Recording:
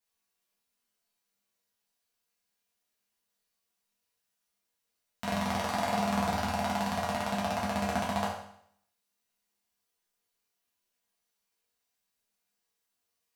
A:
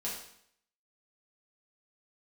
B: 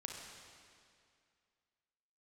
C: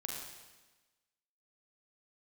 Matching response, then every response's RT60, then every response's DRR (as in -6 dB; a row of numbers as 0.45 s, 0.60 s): A; 0.65 s, 2.3 s, 1.2 s; -6.5 dB, 0.0 dB, -1.5 dB